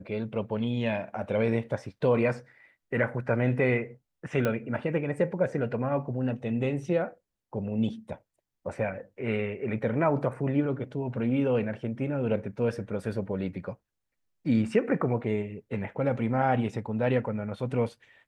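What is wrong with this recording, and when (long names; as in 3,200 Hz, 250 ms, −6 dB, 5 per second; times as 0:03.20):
0:04.45: click −15 dBFS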